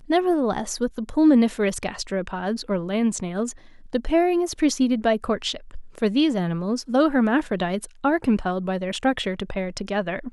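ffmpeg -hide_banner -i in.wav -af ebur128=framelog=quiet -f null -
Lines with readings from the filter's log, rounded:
Integrated loudness:
  I:         -23.3 LUFS
  Threshold: -33.4 LUFS
Loudness range:
  LRA:         1.9 LU
  Threshold: -43.4 LUFS
  LRA low:   -24.5 LUFS
  LRA high:  -22.6 LUFS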